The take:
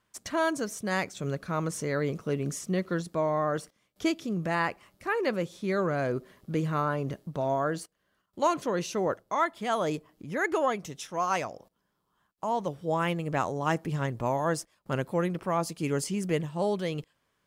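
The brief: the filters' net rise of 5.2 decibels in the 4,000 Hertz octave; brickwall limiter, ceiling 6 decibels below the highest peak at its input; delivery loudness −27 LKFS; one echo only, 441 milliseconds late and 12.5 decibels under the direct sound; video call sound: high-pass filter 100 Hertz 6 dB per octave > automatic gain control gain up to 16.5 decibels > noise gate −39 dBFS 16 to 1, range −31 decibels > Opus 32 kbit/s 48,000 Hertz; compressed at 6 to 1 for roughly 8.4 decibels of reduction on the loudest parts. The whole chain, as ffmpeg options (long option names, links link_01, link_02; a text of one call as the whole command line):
ffmpeg -i in.wav -af "equalizer=frequency=4000:width_type=o:gain=7,acompressor=threshold=-30dB:ratio=6,alimiter=level_in=2dB:limit=-24dB:level=0:latency=1,volume=-2dB,highpass=frequency=100:poles=1,aecho=1:1:441:0.237,dynaudnorm=maxgain=16.5dB,agate=range=-31dB:threshold=-39dB:ratio=16,volume=4dB" -ar 48000 -c:a libopus -b:a 32k out.opus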